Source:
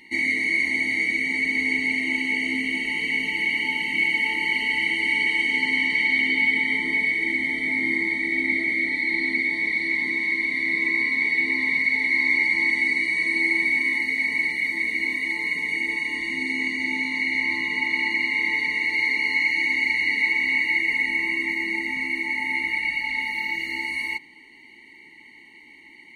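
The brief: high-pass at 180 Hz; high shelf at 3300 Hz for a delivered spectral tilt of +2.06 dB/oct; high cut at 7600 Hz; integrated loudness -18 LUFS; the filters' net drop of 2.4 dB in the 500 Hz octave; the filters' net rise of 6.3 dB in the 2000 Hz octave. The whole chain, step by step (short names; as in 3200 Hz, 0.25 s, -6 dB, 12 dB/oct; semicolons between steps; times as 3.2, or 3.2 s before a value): HPF 180 Hz; LPF 7600 Hz; bell 500 Hz -4 dB; bell 2000 Hz +8 dB; high shelf 3300 Hz -3.5 dB; gain -2.5 dB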